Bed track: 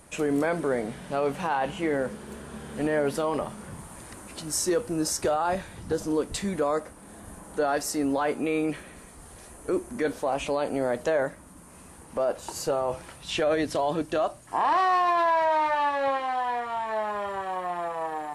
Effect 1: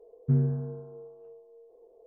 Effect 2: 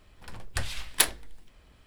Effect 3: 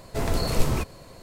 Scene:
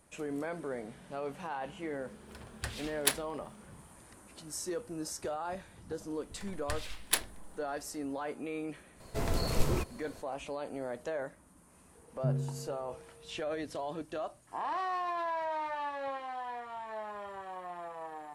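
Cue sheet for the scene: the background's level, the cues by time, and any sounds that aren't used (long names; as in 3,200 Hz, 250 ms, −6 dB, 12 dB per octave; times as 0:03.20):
bed track −12 dB
0:02.07: mix in 2 −6.5 dB + high-pass filter 49 Hz
0:06.13: mix in 2 −7 dB
0:09.00: mix in 3 −6.5 dB
0:11.95: mix in 1 −8 dB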